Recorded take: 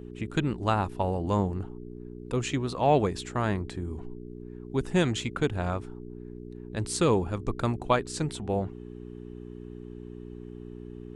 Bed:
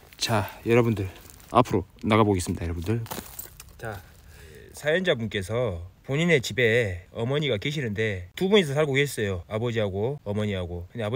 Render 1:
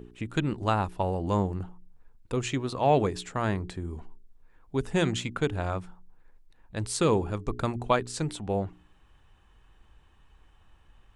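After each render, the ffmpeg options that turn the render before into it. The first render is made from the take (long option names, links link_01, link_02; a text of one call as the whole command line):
ffmpeg -i in.wav -af "bandreject=frequency=60:width_type=h:width=4,bandreject=frequency=120:width_type=h:width=4,bandreject=frequency=180:width_type=h:width=4,bandreject=frequency=240:width_type=h:width=4,bandreject=frequency=300:width_type=h:width=4,bandreject=frequency=360:width_type=h:width=4,bandreject=frequency=420:width_type=h:width=4" out.wav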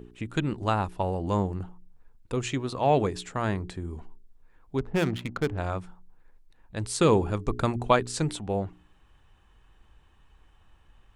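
ffmpeg -i in.wav -filter_complex "[0:a]asettb=1/sr,asplit=3[link_01][link_02][link_03];[link_01]atrim=end=4.784[link_04];[link_02]atrim=start=4.78:end=5.58,asetpts=PTS-STARTPTS,afade=type=in:duration=0.004:curve=qsin,afade=type=out:start_time=0.796:duration=0.004:curve=qsin,adynamicsmooth=sensitivity=4.5:basefreq=600[link_05];[link_03]atrim=start=5.576[link_06];[link_04][link_05]acrossfade=duration=0.004:curve1=hsin:curve2=qsin[link_07];[link_07][link_06]acrossfade=duration=0.004:curve1=qsin:curve2=hsin,asplit=3[link_08][link_09][link_10];[link_08]atrim=end=7.012[link_11];[link_09]atrim=start=7.008:end=8.392,asetpts=PTS-STARTPTS,volume=3dB[link_12];[link_10]atrim=start=8.388[link_13];[link_11][link_12]acrossfade=duration=0.004:curve1=hsin:curve2=hsin[link_14];[link_14][link_13]acrossfade=duration=0.004:curve1=hsin:curve2=hsin" out.wav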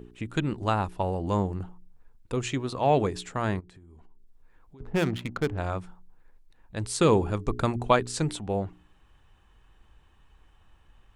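ffmpeg -i in.wav -filter_complex "[0:a]asplit=3[link_01][link_02][link_03];[link_01]afade=type=out:start_time=3.59:duration=0.02[link_04];[link_02]acompressor=threshold=-48dB:ratio=10:attack=3.2:release=140:knee=1:detection=peak,afade=type=in:start_time=3.59:duration=0.02,afade=type=out:start_time=4.8:duration=0.02[link_05];[link_03]afade=type=in:start_time=4.8:duration=0.02[link_06];[link_04][link_05][link_06]amix=inputs=3:normalize=0" out.wav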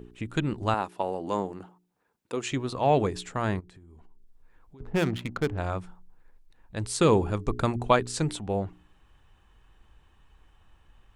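ffmpeg -i in.wav -filter_complex "[0:a]asettb=1/sr,asplit=3[link_01][link_02][link_03];[link_01]atrim=end=0.744[link_04];[link_02]atrim=start=0.74:end=2.52,asetpts=PTS-STARTPTS,afade=type=in:duration=0.004:curve=qsin,afade=type=out:start_time=1.776:duration=0.004:curve=qsin,highpass=260[link_05];[link_03]atrim=start=2.516[link_06];[link_04][link_05]acrossfade=duration=0.004:curve1=hsin:curve2=qsin[link_07];[link_07][link_06]acrossfade=duration=0.004:curve1=qsin:curve2=hsin" out.wav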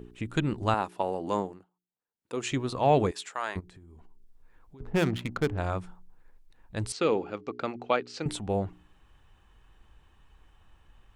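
ffmpeg -i in.wav -filter_complex "[0:a]asettb=1/sr,asplit=3[link_01][link_02][link_03];[link_01]atrim=end=3.114[link_04];[link_02]atrim=start=3.11:end=3.56,asetpts=PTS-STARTPTS,afade=type=in:duration=0.004:curve=qsin,afade=type=out:start_time=0.446:duration=0.004:curve=qsin,highpass=770[link_05];[link_03]atrim=start=3.556[link_06];[link_04][link_05]acrossfade=duration=0.004:curve1=hsin:curve2=qsin[link_07];[link_07][link_06]acrossfade=duration=0.004:curve1=qsin:curve2=hsin,asettb=1/sr,asplit=3[link_08][link_09][link_10];[link_08]atrim=end=6.924[link_11];[link_09]atrim=start=6.92:end=8.26,asetpts=PTS-STARTPTS,afade=type=in:duration=0.004:curve=qsin,afade=type=out:start_time=1.336:duration=0.004:curve=qsin,highpass=350,equalizer=frequency=380:width_type=q:width=4:gain=-4,equalizer=frequency=650:width_type=q:width=4:gain=-4,equalizer=frequency=1000:width_type=q:width=4:gain=-10,equalizer=frequency=1700:width_type=q:width=4:gain=-6,equalizer=frequency=3600:width_type=q:width=4:gain=-7,lowpass=frequency=4700:width=0.5412,lowpass=frequency=4700:width=1.3066[link_12];[link_10]atrim=start=8.256[link_13];[link_11][link_12]acrossfade=duration=0.004:curve1=hsin:curve2=qsin[link_14];[link_14][link_13]acrossfade=duration=0.004:curve1=qsin:curve2=hsin,asplit=3[link_15][link_16][link_17];[link_15]atrim=end=1.65,asetpts=PTS-STARTPTS,afade=type=out:start_time=1.38:duration=0.27:silence=0.0707946[link_18];[link_16]atrim=start=1.65:end=2.15,asetpts=PTS-STARTPTS,volume=-23dB[link_19];[link_17]atrim=start=2.15,asetpts=PTS-STARTPTS,afade=type=in:duration=0.27:silence=0.0707946[link_20];[link_18][link_19][link_20]concat=n=3:v=0:a=1" out.wav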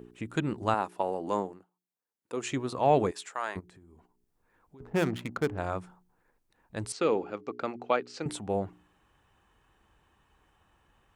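ffmpeg -i in.wav -af "highpass=frequency=180:poles=1,equalizer=frequency=3500:width_type=o:width=1.4:gain=-4.5" out.wav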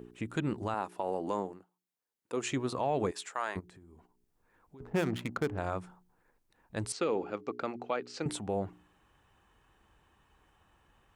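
ffmpeg -i in.wav -af "alimiter=limit=-21.5dB:level=0:latency=1:release=106" out.wav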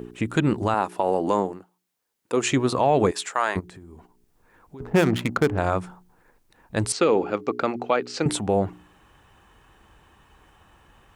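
ffmpeg -i in.wav -af "volume=11.5dB" out.wav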